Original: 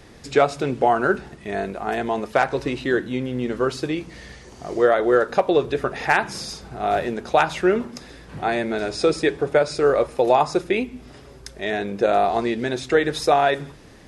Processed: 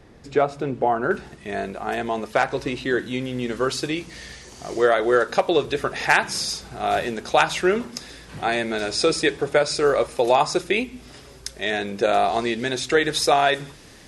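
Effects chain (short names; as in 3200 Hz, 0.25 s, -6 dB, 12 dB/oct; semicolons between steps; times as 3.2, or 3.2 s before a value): high shelf 2100 Hz -8.5 dB, from 1.11 s +4.5 dB, from 2.99 s +10 dB; gain -2 dB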